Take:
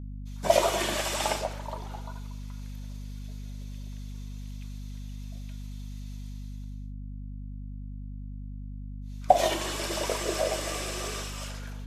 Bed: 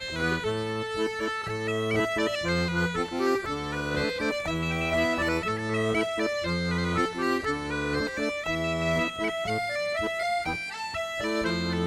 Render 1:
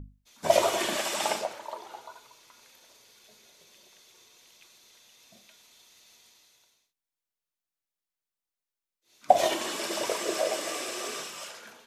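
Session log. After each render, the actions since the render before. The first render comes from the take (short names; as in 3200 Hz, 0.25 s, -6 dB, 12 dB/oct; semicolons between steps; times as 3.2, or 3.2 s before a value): notches 50/100/150/200/250 Hz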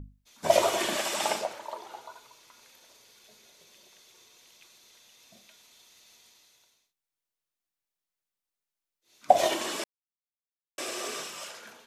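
9.84–10.78 mute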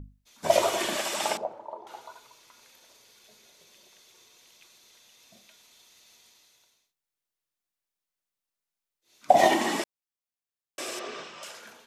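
1.37–1.87 EQ curve 860 Hz 0 dB, 1700 Hz -16 dB, 12000 Hz -27 dB; 9.34–9.82 small resonant body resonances 220/790/1900 Hz, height 14 dB, ringing for 20 ms; 10.99–11.43 air absorption 170 m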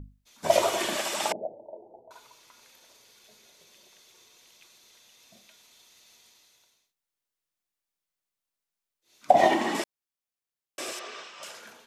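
1.32–2.11 steep low-pass 700 Hz 48 dB/oct; 9.31–9.75 high shelf 5000 Hz -11 dB; 10.92–11.4 HPF 850 Hz 6 dB/oct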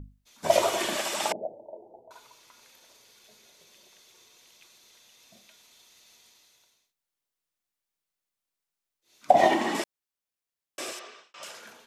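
10.84–11.34 fade out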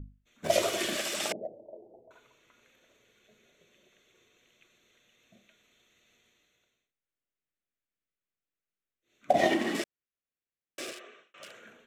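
Wiener smoothing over 9 samples; bell 910 Hz -14.5 dB 0.64 oct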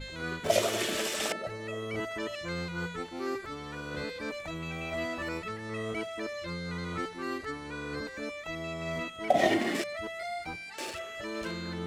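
add bed -9 dB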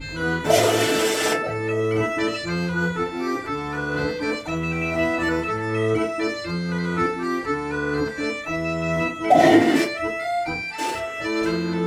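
FDN reverb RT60 0.34 s, low-frequency decay 1.1×, high-frequency decay 0.55×, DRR -10 dB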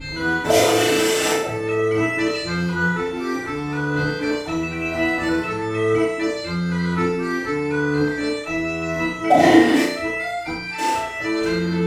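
flutter echo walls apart 5.8 m, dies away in 0.55 s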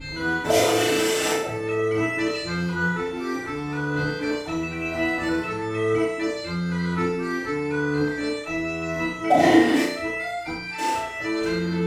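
gain -3.5 dB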